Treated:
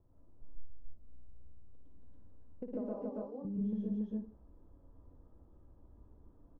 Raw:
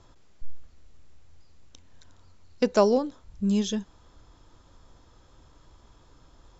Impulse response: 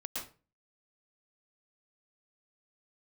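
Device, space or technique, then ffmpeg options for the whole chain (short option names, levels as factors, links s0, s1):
television next door: -filter_complex "[0:a]asettb=1/sr,asplit=3[s0][s1][s2];[s0]atrim=end=2.814[s3];[s1]atrim=start=2.81:end=3.45,asetpts=PTS-STARTPTS,afade=t=in:d=0.004:c=qsin,afade=t=out:st=0.636:d=0.004:c=qsin,highpass=f=780:p=1[s4];[s2]atrim=start=3.446[s5];[s3][s4]acrossfade=d=0.004:c1=hsin:c2=qsin[s6];[s6][s5]acrossfade=d=0.004:c1=qsin:c2=hsin,aecho=1:1:55.39|282.8:0.562|0.891,acompressor=threshold=0.0447:ratio=6,lowpass=520[s7];[1:a]atrim=start_sample=2205[s8];[s7][s8]afir=irnorm=-1:irlink=0,volume=0.422"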